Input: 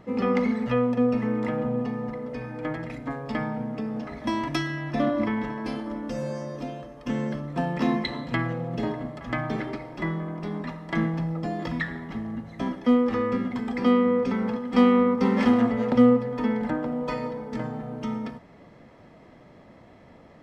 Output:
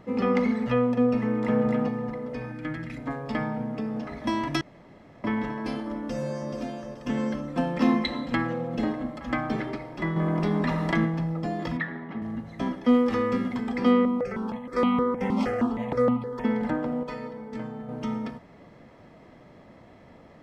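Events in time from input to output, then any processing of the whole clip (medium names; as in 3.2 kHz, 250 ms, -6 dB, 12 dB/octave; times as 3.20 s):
1.22–1.62 s: echo throw 260 ms, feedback 10%, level -2 dB
2.52–2.97 s: high-order bell 660 Hz -9.5 dB
4.61–5.24 s: room tone
5.99–6.51 s: echo throw 430 ms, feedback 40%, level -7 dB
7.17–9.53 s: comb 3.8 ms, depth 54%
10.16–11.05 s: level flattener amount 70%
11.77–12.22 s: band-pass 160–2500 Hz
12.93–13.54 s: treble shelf 3.9 kHz -> 5 kHz +8.5 dB
14.05–16.45 s: stepped phaser 6.4 Hz 460–1700 Hz
17.03–17.89 s: feedback comb 220 Hz, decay 0.18 s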